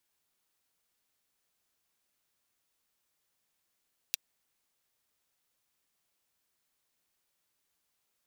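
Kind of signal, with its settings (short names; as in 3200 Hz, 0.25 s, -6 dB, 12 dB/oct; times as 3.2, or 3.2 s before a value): closed hi-hat, high-pass 3000 Hz, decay 0.02 s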